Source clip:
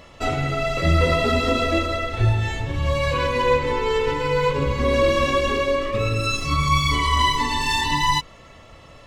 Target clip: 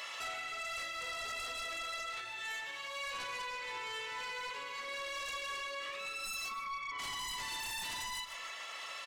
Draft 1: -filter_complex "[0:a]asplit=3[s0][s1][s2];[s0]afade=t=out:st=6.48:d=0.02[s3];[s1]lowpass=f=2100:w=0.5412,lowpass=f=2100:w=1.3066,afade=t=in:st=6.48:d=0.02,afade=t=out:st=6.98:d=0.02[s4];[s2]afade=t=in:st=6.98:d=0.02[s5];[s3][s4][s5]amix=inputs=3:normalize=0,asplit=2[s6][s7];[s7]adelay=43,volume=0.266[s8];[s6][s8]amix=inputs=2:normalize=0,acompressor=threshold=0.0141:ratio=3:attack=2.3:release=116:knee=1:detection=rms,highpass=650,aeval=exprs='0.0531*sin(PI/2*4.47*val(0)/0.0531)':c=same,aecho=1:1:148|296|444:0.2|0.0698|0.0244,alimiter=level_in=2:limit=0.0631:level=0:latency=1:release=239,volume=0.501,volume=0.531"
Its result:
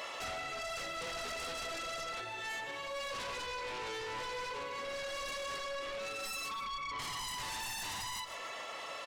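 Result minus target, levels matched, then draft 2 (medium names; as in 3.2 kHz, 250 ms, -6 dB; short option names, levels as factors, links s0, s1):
500 Hz band +7.0 dB
-filter_complex "[0:a]asplit=3[s0][s1][s2];[s0]afade=t=out:st=6.48:d=0.02[s3];[s1]lowpass=f=2100:w=0.5412,lowpass=f=2100:w=1.3066,afade=t=in:st=6.48:d=0.02,afade=t=out:st=6.98:d=0.02[s4];[s2]afade=t=in:st=6.98:d=0.02[s5];[s3][s4][s5]amix=inputs=3:normalize=0,asplit=2[s6][s7];[s7]adelay=43,volume=0.266[s8];[s6][s8]amix=inputs=2:normalize=0,acompressor=threshold=0.0141:ratio=3:attack=2.3:release=116:knee=1:detection=rms,highpass=1400,aeval=exprs='0.0531*sin(PI/2*4.47*val(0)/0.0531)':c=same,aecho=1:1:148|296|444:0.2|0.0698|0.0244,alimiter=level_in=2:limit=0.0631:level=0:latency=1:release=239,volume=0.501,volume=0.531"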